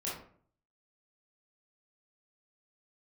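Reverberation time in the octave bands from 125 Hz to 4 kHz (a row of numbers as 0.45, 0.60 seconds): 0.70, 0.65, 0.55, 0.50, 0.40, 0.30 seconds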